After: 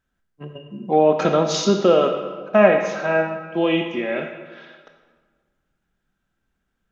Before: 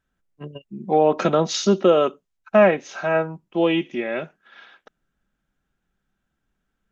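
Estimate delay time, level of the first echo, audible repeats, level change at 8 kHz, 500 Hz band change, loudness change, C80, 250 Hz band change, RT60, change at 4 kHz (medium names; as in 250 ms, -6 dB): no echo, no echo, no echo, no reading, +1.5 dB, +1.0 dB, 7.5 dB, +1.0 dB, 1.5 s, +1.5 dB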